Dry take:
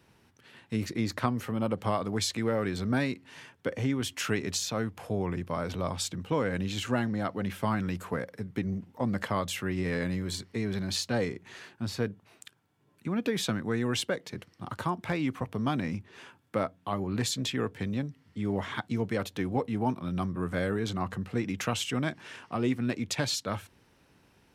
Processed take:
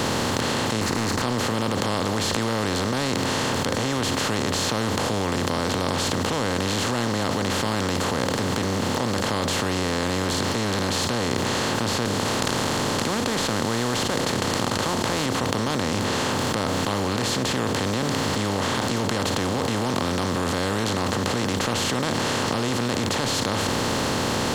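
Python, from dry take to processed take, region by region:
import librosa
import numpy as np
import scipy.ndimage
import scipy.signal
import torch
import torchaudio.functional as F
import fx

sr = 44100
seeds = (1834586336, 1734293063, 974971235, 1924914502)

y = fx.chain(x, sr, fx.leveller(passes=3),
    fx.fixed_phaser(hz=1400.0, stages=4), at=(0.81, 1.22))
y = fx.chain(y, sr, fx.cvsd(bps=64000),
    fx.low_shelf(hz=220.0, db=-5.5),
    fx.notch(hz=2700.0, q=22.0), at=(12.05, 15.26))
y = fx.bin_compress(y, sr, power=0.2)
y = fx.env_flatten(y, sr, amount_pct=100)
y = y * 10.0 ** (-7.0 / 20.0)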